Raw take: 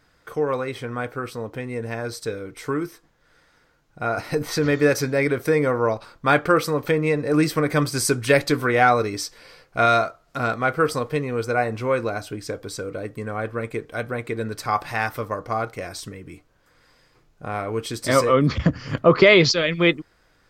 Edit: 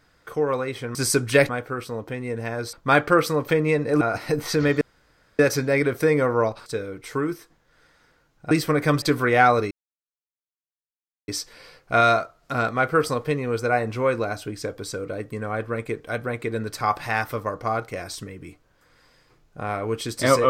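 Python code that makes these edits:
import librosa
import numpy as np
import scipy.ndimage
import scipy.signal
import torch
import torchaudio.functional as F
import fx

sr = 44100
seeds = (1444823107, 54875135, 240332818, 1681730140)

y = fx.edit(x, sr, fx.swap(start_s=2.19, length_s=1.85, other_s=6.11, other_length_s=1.28),
    fx.insert_room_tone(at_s=4.84, length_s=0.58),
    fx.move(start_s=7.9, length_s=0.54, to_s=0.95),
    fx.insert_silence(at_s=9.13, length_s=1.57), tone=tone)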